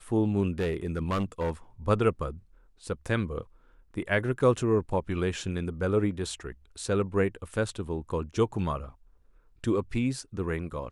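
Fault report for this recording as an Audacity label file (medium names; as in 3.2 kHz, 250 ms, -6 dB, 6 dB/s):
0.590000	1.510000	clipped -24 dBFS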